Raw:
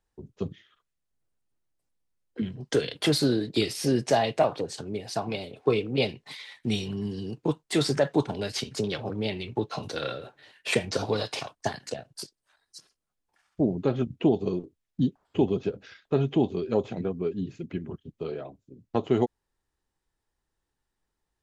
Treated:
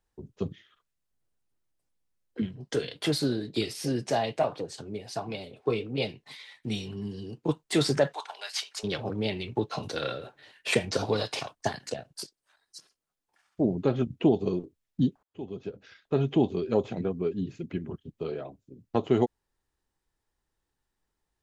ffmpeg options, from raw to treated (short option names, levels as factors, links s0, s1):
-filter_complex "[0:a]asettb=1/sr,asplit=3[s0][s1][s2];[s0]atrim=end=2.464[s3];[s1]atrim=start=2.46:end=7.49,asetpts=PTS-STARTPTS,afade=t=in:d=0.004:c=qsin,afade=t=out:st=5.026:d=0.004:c=qsin,flanger=delay=5.9:depth=3.4:regen=-62:speed=1.4:shape=triangular[s4];[s2]atrim=start=7.486[s5];[s3][s4]acrossfade=d=0.004:c1=hsin:c2=qsin[s6];[s6][s5]acrossfade=d=0.004:c1=qsin:c2=hsin,asplit=3[s7][s8][s9];[s7]afade=t=out:st=8.12:d=0.02[s10];[s8]highpass=f=830:w=0.5412,highpass=f=830:w=1.3066,afade=t=in:st=8.12:d=0.02,afade=t=out:st=8.83:d=0.02[s11];[s9]afade=t=in:st=8.83:d=0.02[s12];[s10][s11][s12]amix=inputs=3:normalize=0,asettb=1/sr,asplit=3[s13][s14][s15];[s13]atrim=end=12.114[s16];[s14]atrim=start=12.11:end=13.65,asetpts=PTS-STARTPTS,afade=t=in:d=0.004:c=qsin,afade=t=out:st=1.536:d=0.004:c=qsin,lowshelf=f=130:g=-9[s17];[s15]atrim=start=13.646[s18];[s16][s17]acrossfade=d=0.004:c1=hsin:c2=qsin[s19];[s19][s18]acrossfade=d=0.004:c1=qsin:c2=hsin,asplit=2[s20][s21];[s20]atrim=end=15.23,asetpts=PTS-STARTPTS,afade=t=out:st=15.226:d=0.004:c=hsin[s22];[s21]atrim=start=15.23,asetpts=PTS-STARTPTS,afade=t=in:d=1.11[s23];[s22][s23]concat=n=2:v=0:a=1"